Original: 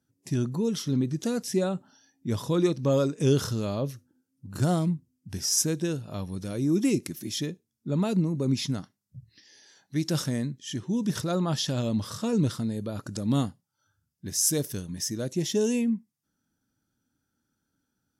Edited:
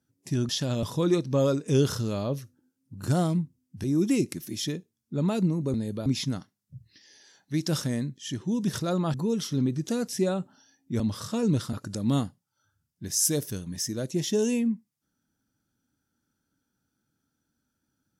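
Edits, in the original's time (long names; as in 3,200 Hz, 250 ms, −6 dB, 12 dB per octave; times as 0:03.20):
0:00.49–0:02.35: swap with 0:11.56–0:11.90
0:05.36–0:06.58: remove
0:12.63–0:12.95: move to 0:08.48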